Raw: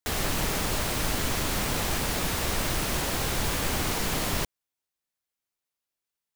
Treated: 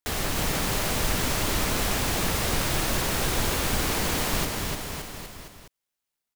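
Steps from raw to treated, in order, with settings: bouncing-ball echo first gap 300 ms, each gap 0.9×, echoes 5; companded quantiser 8-bit

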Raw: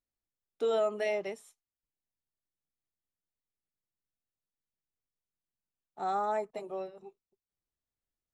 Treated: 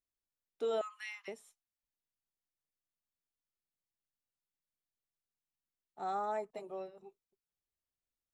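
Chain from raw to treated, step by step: 0.81–1.28 s: steep high-pass 980 Hz 72 dB/octave; trim -5 dB

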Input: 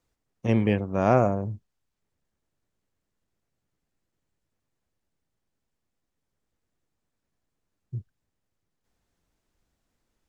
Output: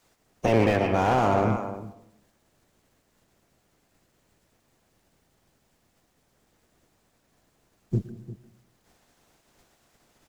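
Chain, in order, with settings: spectral peaks clipped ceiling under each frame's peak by 17 dB; peaking EQ 690 Hz +3 dB 0.5 oct; in parallel at +2 dB: compression, threshold -30 dBFS, peak gain reduction 16 dB; on the sum: saturation -8 dBFS, distortion -16 dB; echo from a far wall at 60 m, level -15 dB; on a send at -13 dB: reverberation RT60 0.75 s, pre-delay 107 ms; on the sum: loudness maximiser +11.5 dB; slew-rate limiter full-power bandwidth 250 Hz; trim -8.5 dB

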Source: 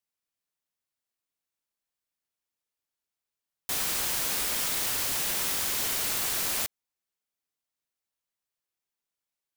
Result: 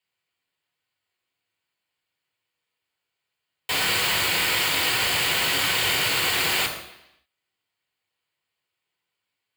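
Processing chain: peaking EQ 240 Hz -13 dB 0.22 oct; reverberation RT60 0.85 s, pre-delay 3 ms, DRR 1 dB

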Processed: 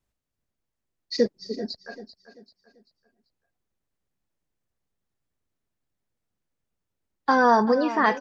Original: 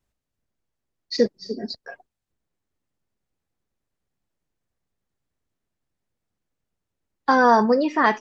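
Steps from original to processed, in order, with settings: feedback delay 389 ms, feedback 38%, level -14 dB; trim -2.5 dB

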